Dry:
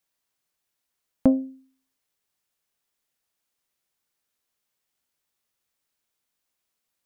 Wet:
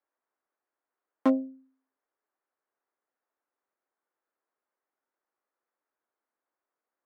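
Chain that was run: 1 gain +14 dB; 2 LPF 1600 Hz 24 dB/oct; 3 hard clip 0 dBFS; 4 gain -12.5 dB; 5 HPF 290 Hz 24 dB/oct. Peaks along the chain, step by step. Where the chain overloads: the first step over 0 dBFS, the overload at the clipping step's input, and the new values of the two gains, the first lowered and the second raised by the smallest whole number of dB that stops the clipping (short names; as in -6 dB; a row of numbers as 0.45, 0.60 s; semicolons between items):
+7.0, +7.0, 0.0, -12.5, -13.0 dBFS; step 1, 7.0 dB; step 1 +7 dB, step 4 -5.5 dB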